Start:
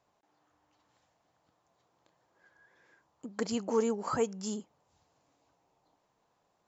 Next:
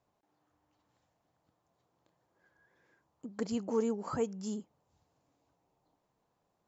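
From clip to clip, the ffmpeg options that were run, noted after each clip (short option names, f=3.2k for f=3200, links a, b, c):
-af "lowshelf=f=460:g=8,volume=-7dB"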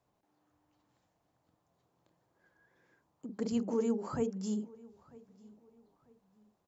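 -filter_complex "[0:a]acrossover=split=490[a][b];[a]asplit=2[c][d];[d]adelay=47,volume=-2.5dB[e];[c][e]amix=inputs=2:normalize=0[f];[b]alimiter=level_in=10.5dB:limit=-24dB:level=0:latency=1:release=55,volume=-10.5dB[g];[f][g]amix=inputs=2:normalize=0,asplit=2[h][i];[i]adelay=945,lowpass=f=3k:p=1,volume=-22.5dB,asplit=2[j][k];[k]adelay=945,lowpass=f=3k:p=1,volume=0.33[l];[h][j][l]amix=inputs=3:normalize=0"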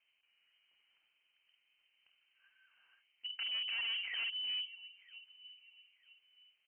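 -af "asoftclip=type=hard:threshold=-36dB,lowpass=f=2.7k:t=q:w=0.5098,lowpass=f=2.7k:t=q:w=0.6013,lowpass=f=2.7k:t=q:w=0.9,lowpass=f=2.7k:t=q:w=2.563,afreqshift=-3200"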